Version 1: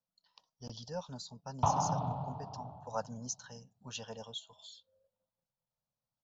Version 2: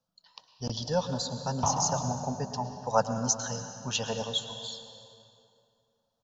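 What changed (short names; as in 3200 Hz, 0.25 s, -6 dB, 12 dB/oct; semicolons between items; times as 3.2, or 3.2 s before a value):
speech +10.5 dB; reverb: on, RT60 2.6 s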